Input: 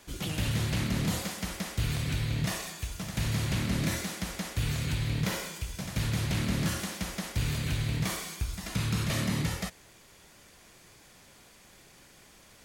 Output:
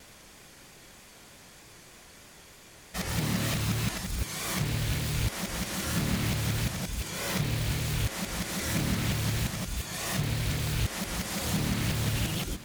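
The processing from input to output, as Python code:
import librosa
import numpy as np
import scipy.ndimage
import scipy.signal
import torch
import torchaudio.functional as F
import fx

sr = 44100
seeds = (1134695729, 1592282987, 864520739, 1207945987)

p1 = x[::-1].copy()
p2 = (np.mod(10.0 ** (30.0 / 20.0) * p1 + 1.0, 2.0) - 1.0) / 10.0 ** (30.0 / 20.0)
p3 = p1 + (p2 * librosa.db_to_amplitude(-4.0))
p4 = p3 + 10.0 ** (-16.5 / 20.0) * np.pad(p3, (int(827 * sr / 1000.0), 0))[:len(p3)]
y = fx.vibrato(p4, sr, rate_hz=3.2, depth_cents=52.0)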